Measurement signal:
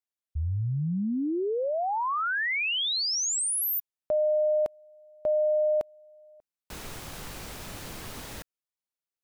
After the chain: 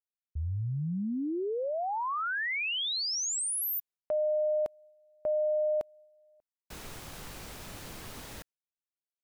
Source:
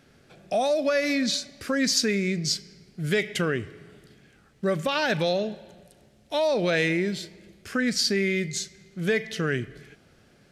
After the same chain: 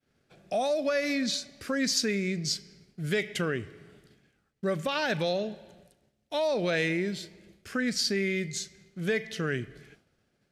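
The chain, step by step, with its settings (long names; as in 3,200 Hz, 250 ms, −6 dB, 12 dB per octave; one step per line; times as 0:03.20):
downward expander −49 dBFS
level −4 dB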